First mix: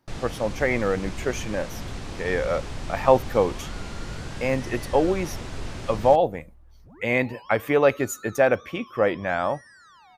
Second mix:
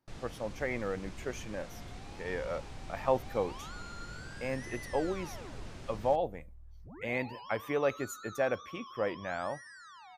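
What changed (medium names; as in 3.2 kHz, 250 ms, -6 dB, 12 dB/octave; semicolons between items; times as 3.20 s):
speech -11.5 dB; first sound -12.0 dB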